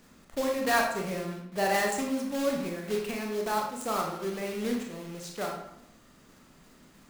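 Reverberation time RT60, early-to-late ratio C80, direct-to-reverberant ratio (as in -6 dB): 0.80 s, 7.5 dB, 0.0 dB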